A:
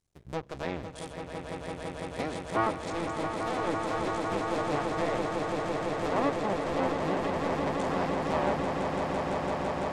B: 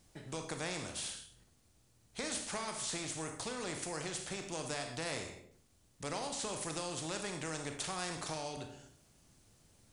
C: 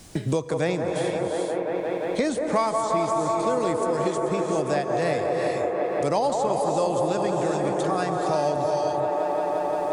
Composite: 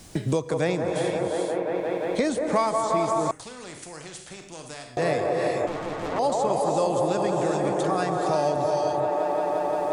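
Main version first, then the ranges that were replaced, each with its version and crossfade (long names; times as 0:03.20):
C
0:03.31–0:04.97: punch in from B
0:05.67–0:06.19: punch in from A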